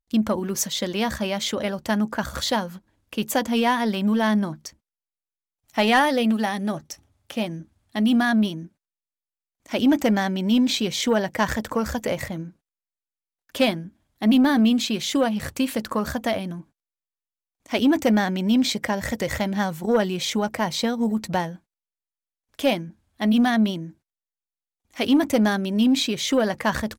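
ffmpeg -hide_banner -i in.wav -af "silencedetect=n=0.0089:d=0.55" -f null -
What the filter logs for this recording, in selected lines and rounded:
silence_start: 4.70
silence_end: 5.70 | silence_duration: 1.00
silence_start: 8.67
silence_end: 9.66 | silence_duration: 0.99
silence_start: 12.50
silence_end: 13.55 | silence_duration: 1.05
silence_start: 16.62
silence_end: 17.66 | silence_duration: 1.04
silence_start: 21.56
silence_end: 22.54 | silence_duration: 0.98
silence_start: 23.91
silence_end: 24.94 | silence_duration: 1.03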